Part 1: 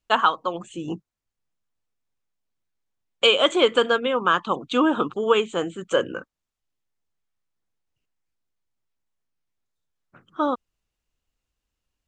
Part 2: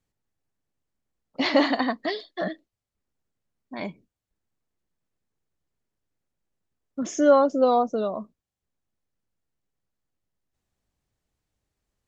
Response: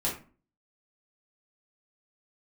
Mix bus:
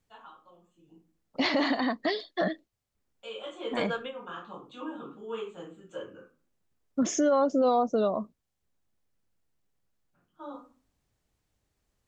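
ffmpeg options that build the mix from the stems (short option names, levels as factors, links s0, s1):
-filter_complex "[0:a]flanger=delay=8.9:depth=4.2:regen=72:speed=1.5:shape=triangular,volume=0.335,afade=t=in:st=2.97:d=0.69:silence=0.266073,asplit=2[s0][s1];[s1]volume=0.224[s2];[1:a]alimiter=limit=0.158:level=0:latency=1:release=33,volume=1.41,asplit=2[s3][s4];[s4]apad=whole_len=532629[s5];[s0][s5]sidechaingate=range=0.0224:threshold=0.00224:ratio=16:detection=peak[s6];[2:a]atrim=start_sample=2205[s7];[s2][s7]afir=irnorm=-1:irlink=0[s8];[s6][s3][s8]amix=inputs=3:normalize=0,alimiter=limit=0.141:level=0:latency=1:release=436"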